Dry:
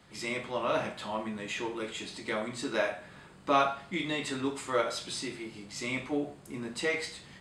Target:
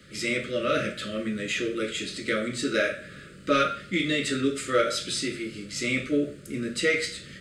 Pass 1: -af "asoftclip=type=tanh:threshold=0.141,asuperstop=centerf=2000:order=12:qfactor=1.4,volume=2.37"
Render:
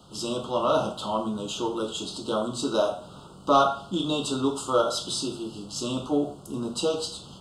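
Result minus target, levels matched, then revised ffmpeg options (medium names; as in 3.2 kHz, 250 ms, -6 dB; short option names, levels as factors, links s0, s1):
2 kHz band -15.0 dB
-af "asoftclip=type=tanh:threshold=0.141,asuperstop=centerf=860:order=12:qfactor=1.4,volume=2.37"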